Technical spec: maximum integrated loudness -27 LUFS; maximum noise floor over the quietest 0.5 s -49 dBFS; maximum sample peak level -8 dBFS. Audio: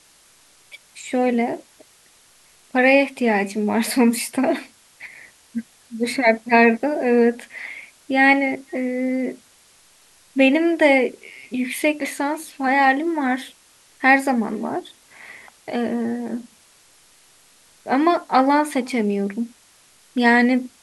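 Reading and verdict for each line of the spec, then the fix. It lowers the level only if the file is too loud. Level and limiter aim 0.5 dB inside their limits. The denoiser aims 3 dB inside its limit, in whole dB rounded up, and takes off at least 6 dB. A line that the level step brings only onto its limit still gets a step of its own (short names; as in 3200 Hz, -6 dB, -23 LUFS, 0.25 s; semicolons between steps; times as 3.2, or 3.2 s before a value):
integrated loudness -19.5 LUFS: fail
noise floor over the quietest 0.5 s -54 dBFS: OK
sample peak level -3.5 dBFS: fail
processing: gain -8 dB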